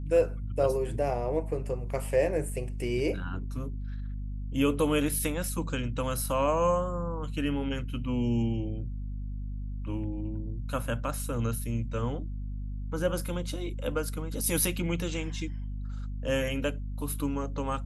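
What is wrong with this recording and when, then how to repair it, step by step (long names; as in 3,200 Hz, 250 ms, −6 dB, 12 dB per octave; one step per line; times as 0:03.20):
mains hum 50 Hz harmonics 5 −35 dBFS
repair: hum removal 50 Hz, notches 5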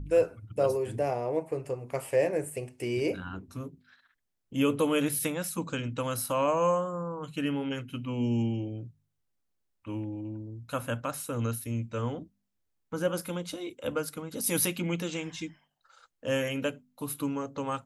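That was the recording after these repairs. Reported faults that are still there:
none of them is left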